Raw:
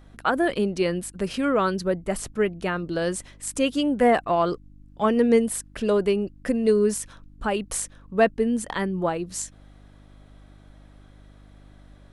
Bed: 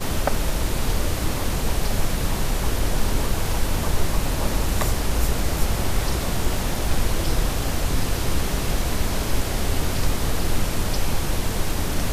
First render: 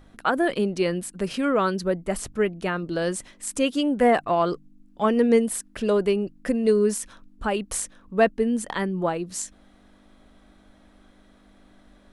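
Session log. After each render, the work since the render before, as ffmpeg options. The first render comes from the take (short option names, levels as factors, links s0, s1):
-af "bandreject=f=50:t=h:w=4,bandreject=f=100:t=h:w=4,bandreject=f=150:t=h:w=4"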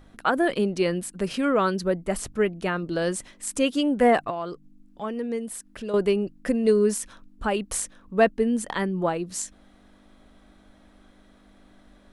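-filter_complex "[0:a]asettb=1/sr,asplit=3[s0][s1][s2];[s0]atrim=end=4.304[s3];[s1]atrim=start=4.3:end=5.94,asetpts=PTS-STARTPTS,afade=t=in:d=0.004:c=qsin,afade=t=out:st=1.636:d=0.004:c=qsin,acompressor=threshold=0.00562:ratio=1.5:attack=3.2:release=140:knee=1:detection=peak[s4];[s2]atrim=start=5.936[s5];[s3][s4]acrossfade=d=0.004:c1=hsin:c2=qsin[s6];[s6][s5]acrossfade=d=0.004:c1=qsin:c2=hsin"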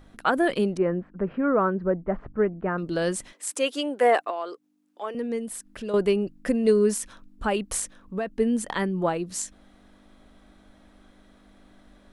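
-filter_complex "[0:a]asettb=1/sr,asplit=3[s0][s1][s2];[s0]atrim=end=0.774[s3];[s1]atrim=start=0.77:end=2.78,asetpts=PTS-STARTPTS,afade=t=in:d=0.004:c=qsin,afade=t=out:st=2.006:d=0.004:c=qsin,lowpass=f=1600:w=0.5412,lowpass=f=1600:w=1.3066[s4];[s2]atrim=start=2.776[s5];[s3][s4]acrossfade=d=0.004:c1=hsin:c2=qsin[s6];[s6][s5]acrossfade=d=0.004:c1=qsin:c2=hsin,asettb=1/sr,asplit=3[s7][s8][s9];[s7]atrim=end=3.334[s10];[s8]atrim=start=3.33:end=5.15,asetpts=PTS-STARTPTS,afade=t=in:d=0.004:c=qsin,afade=t=out:st=1.816:d=0.004:c=qsin,highpass=f=350:w=0.5412,highpass=f=350:w=1.3066[s11];[s9]atrim=start=5.146[s12];[s10][s11]acrossfade=d=0.004:c1=hsin:c2=qsin[s13];[s13][s12]acrossfade=d=0.004:c1=qsin:c2=hsin,asettb=1/sr,asplit=3[s14][s15][s16];[s14]atrim=end=7.794[s17];[s15]atrim=start=7.79:end=8.39,asetpts=PTS-STARTPTS,afade=t=in:d=0.004:c=qsin,afade=t=out:st=0.596:d=0.004:c=qsin,acompressor=threshold=0.0631:ratio=12:attack=3.2:release=140:knee=1:detection=peak[s18];[s16]atrim=start=8.386[s19];[s17][s18]acrossfade=d=0.004:c1=hsin:c2=qsin[s20];[s20][s19]acrossfade=d=0.004:c1=qsin:c2=hsin"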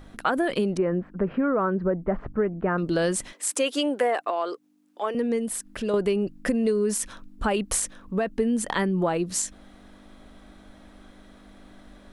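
-filter_complex "[0:a]asplit=2[s0][s1];[s1]alimiter=limit=0.1:level=0:latency=1:release=33,volume=0.841[s2];[s0][s2]amix=inputs=2:normalize=0,acompressor=threshold=0.1:ratio=6"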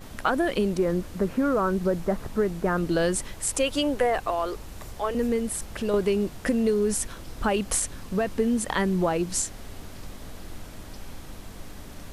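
-filter_complex "[1:a]volume=0.119[s0];[0:a][s0]amix=inputs=2:normalize=0"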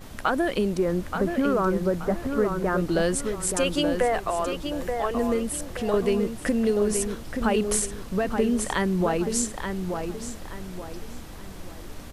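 -filter_complex "[0:a]asplit=2[s0][s1];[s1]adelay=877,lowpass=f=3600:p=1,volume=0.501,asplit=2[s2][s3];[s3]adelay=877,lowpass=f=3600:p=1,volume=0.36,asplit=2[s4][s5];[s5]adelay=877,lowpass=f=3600:p=1,volume=0.36,asplit=2[s6][s7];[s7]adelay=877,lowpass=f=3600:p=1,volume=0.36[s8];[s0][s2][s4][s6][s8]amix=inputs=5:normalize=0"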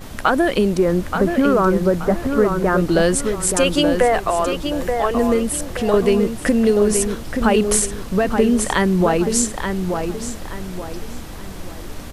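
-af "volume=2.37"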